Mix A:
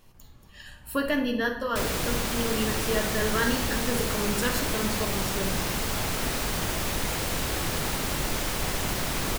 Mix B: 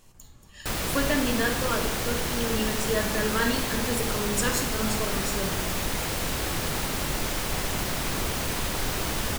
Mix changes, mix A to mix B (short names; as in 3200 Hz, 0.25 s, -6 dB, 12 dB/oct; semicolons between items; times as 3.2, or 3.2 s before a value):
speech: add bell 7600 Hz +10 dB 0.66 oct; background: entry -1.10 s